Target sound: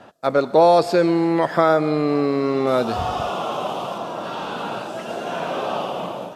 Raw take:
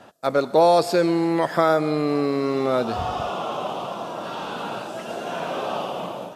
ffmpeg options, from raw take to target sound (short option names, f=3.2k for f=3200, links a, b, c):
-af "asetnsamples=n=441:p=0,asendcmd='2.67 highshelf g 2.5;3.98 highshelf g -4',highshelf=f=6.3k:g=-10,volume=2.5dB"